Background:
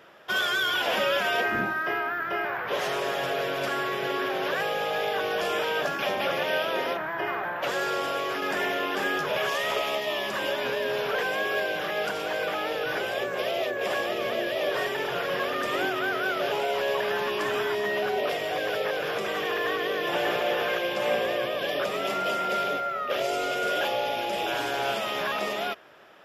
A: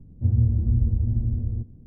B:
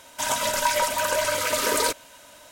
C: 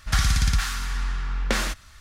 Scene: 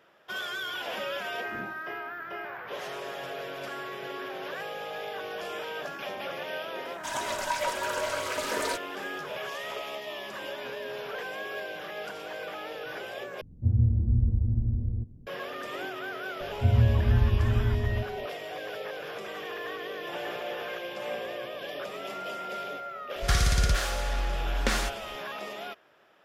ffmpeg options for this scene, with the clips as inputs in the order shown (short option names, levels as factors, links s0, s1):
-filter_complex "[1:a]asplit=2[s0][s1];[0:a]volume=0.355[s2];[2:a]highshelf=f=8200:g=-11.5[s3];[s2]asplit=2[s4][s5];[s4]atrim=end=13.414[s6];[s0]atrim=end=1.86,asetpts=PTS-STARTPTS,volume=0.708[s7];[s5]atrim=start=15.266[s8];[s3]atrim=end=2.51,asetpts=PTS-STARTPTS,volume=0.447,afade=t=in:d=0.004:c=hsin,afade=t=out:st=2.506:d=0.004:c=hsin,adelay=6850[s9];[s1]atrim=end=1.86,asetpts=PTS-STARTPTS,volume=0.841,afade=t=in:d=0.004:c=hsin,afade=t=out:st=1.856:d=0.004:c=hsin,adelay=16400[s10];[3:a]atrim=end=2,asetpts=PTS-STARTPTS,volume=0.708,afade=t=in:d=0.004:c=hsin,afade=t=out:st=1.996:d=0.004:c=hsin,adelay=23160[s11];[s6][s7]acrossfade=d=0.004:c1=hsin:c2=hsin[s12];[s12][s8]acrossfade=d=0.004:c1=hsin:c2=hsin[s13];[s13][s9][s10][s11]amix=inputs=4:normalize=0"